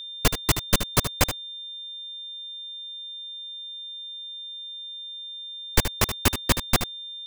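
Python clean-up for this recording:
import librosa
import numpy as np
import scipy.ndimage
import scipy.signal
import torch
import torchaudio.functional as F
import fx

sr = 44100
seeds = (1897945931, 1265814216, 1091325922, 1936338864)

y = fx.notch(x, sr, hz=3600.0, q=30.0)
y = fx.fix_echo_inverse(y, sr, delay_ms=76, level_db=-9.5)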